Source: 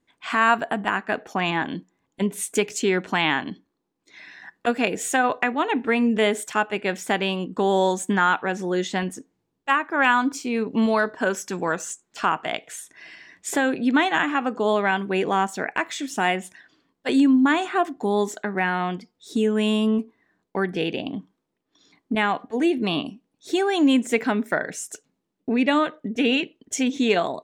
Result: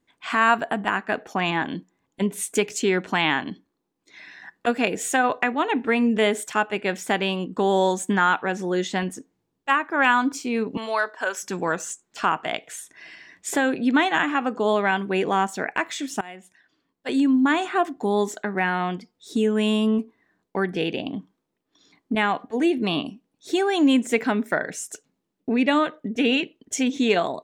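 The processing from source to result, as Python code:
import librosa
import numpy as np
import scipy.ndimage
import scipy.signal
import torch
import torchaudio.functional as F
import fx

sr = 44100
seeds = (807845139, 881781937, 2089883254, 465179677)

y = fx.highpass(x, sr, hz=660.0, slope=12, at=(10.77, 11.43))
y = fx.edit(y, sr, fx.fade_in_from(start_s=16.21, length_s=1.43, floor_db=-22.5), tone=tone)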